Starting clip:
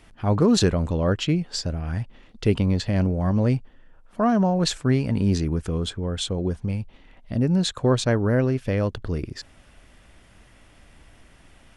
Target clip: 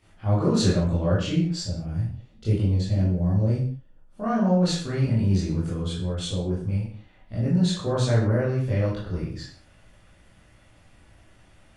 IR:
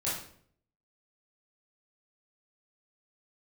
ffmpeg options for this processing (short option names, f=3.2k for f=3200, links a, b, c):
-filter_complex "[0:a]asettb=1/sr,asplit=3[a][b][c];[a]atrim=end=1.614[d];[b]atrim=start=1.61:end=4.24,asetpts=PTS-STARTPTS,afade=t=in:d=0.004:c=qsin,afade=t=out:st=2.626:d=0.004:c=qsin,equalizer=f=1.5k:w=0.58:g=-9.5[e];[c]atrim=start=4.236[f];[d][e]acrossfade=d=0.004:c1=hsin:c2=qsin[g];[g][f]acrossfade=d=0.004:c1=qsin:c2=hsin[h];[1:a]atrim=start_sample=2205,afade=t=out:st=0.3:d=0.01,atrim=end_sample=13671[i];[h][i]afir=irnorm=-1:irlink=0,volume=-9dB"